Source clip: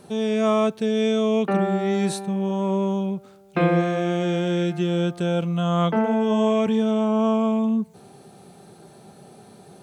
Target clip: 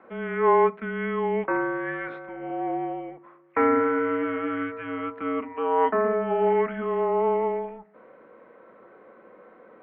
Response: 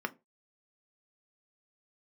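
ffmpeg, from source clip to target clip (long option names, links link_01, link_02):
-filter_complex "[0:a]highpass=frequency=590:width_type=q:width=0.5412,highpass=frequency=590:width_type=q:width=1.307,lowpass=frequency=2200:width_type=q:width=0.5176,lowpass=frequency=2200:width_type=q:width=0.7071,lowpass=frequency=2200:width_type=q:width=1.932,afreqshift=-240,asplit=2[link_01][link_02];[1:a]atrim=start_sample=2205,highshelf=frequency=7900:gain=6[link_03];[link_02][link_03]afir=irnorm=-1:irlink=0,volume=-0.5dB[link_04];[link_01][link_04]amix=inputs=2:normalize=0,crystalizer=i=2.5:c=0,volume=-4dB"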